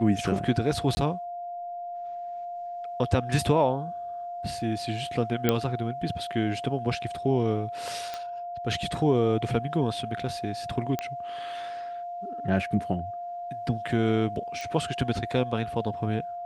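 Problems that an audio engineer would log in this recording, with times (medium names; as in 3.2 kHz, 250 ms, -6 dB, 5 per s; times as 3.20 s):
whine 700 Hz -33 dBFS
0.95–0.97 s: dropout 20 ms
5.49 s: pop -8 dBFS
8.14 s: pop -19 dBFS
10.99 s: pop -15 dBFS
14.61 s: pop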